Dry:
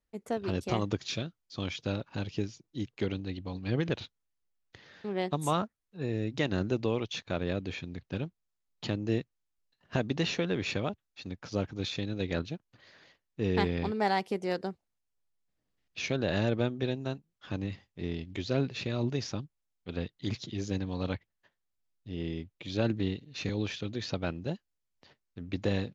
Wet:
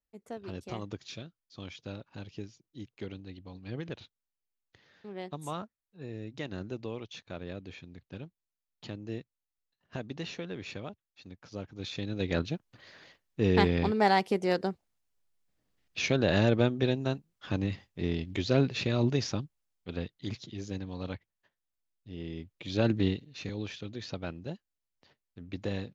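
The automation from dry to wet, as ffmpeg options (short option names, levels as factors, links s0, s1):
-af "volume=4.22,afade=t=in:st=11.7:d=0.84:silence=0.237137,afade=t=out:st=19.11:d=1.31:silence=0.375837,afade=t=in:st=22.28:d=0.79:silence=0.375837,afade=t=out:st=23.07:d=0.28:silence=0.375837"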